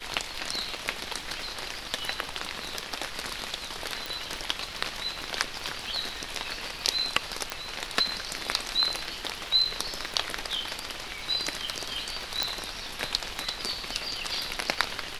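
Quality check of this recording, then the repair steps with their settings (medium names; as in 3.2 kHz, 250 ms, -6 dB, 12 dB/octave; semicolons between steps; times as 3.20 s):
crackle 20 per s -36 dBFS
4.06 s: pop
7.50 s: pop
12.43 s: pop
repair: de-click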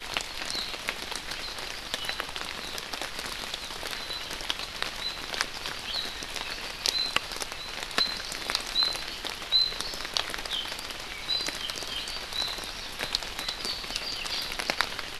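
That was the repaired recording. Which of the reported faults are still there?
nothing left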